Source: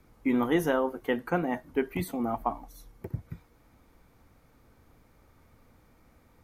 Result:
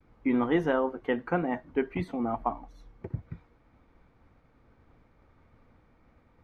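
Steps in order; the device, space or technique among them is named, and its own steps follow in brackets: hearing-loss simulation (LPF 3000 Hz 12 dB/oct; expander -58 dBFS)

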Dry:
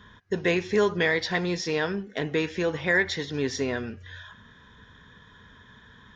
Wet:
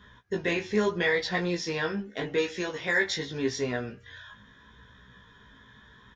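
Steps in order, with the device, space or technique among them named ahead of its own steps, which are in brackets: 2.38–3.17 tone controls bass -5 dB, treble +7 dB; double-tracked vocal (doubler 15 ms -7 dB; chorus 0.79 Hz, delay 16.5 ms, depth 2.3 ms)

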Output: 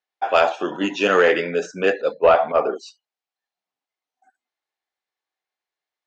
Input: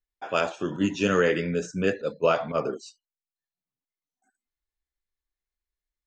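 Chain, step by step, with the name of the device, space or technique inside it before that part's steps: intercom (BPF 400–4500 Hz; bell 760 Hz +8 dB 0.41 oct; soft clip -12.5 dBFS, distortion -20 dB); 2.15–2.76 Bessel low-pass 2700 Hz, order 2; gain +8.5 dB

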